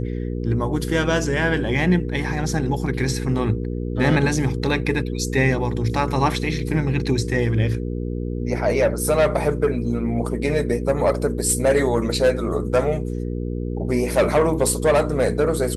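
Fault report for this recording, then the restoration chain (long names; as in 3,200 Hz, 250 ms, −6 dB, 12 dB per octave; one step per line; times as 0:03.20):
mains hum 60 Hz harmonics 8 −26 dBFS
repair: hum removal 60 Hz, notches 8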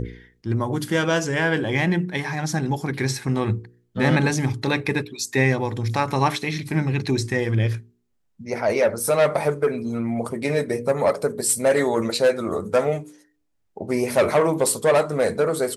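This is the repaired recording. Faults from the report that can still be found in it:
none of them is left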